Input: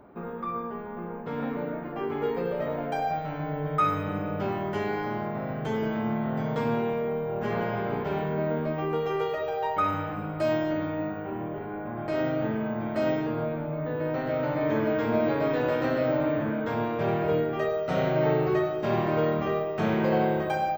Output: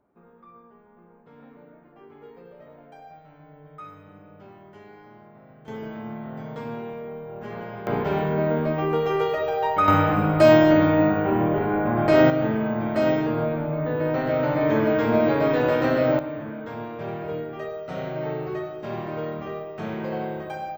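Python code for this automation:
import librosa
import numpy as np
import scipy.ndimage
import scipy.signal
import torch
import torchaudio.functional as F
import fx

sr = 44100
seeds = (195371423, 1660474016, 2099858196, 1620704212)

y = fx.gain(x, sr, db=fx.steps((0.0, -17.5), (5.68, -6.5), (7.87, 5.0), (9.88, 12.0), (12.3, 5.0), (16.19, -5.5)))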